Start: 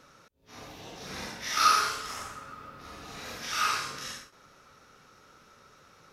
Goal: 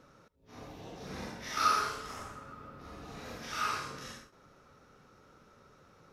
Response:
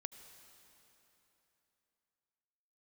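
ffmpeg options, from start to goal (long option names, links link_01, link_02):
-filter_complex "[0:a]tiltshelf=frequency=1100:gain=5.5[link_01];[1:a]atrim=start_sample=2205,atrim=end_sample=3528[link_02];[link_01][link_02]afir=irnorm=-1:irlink=0"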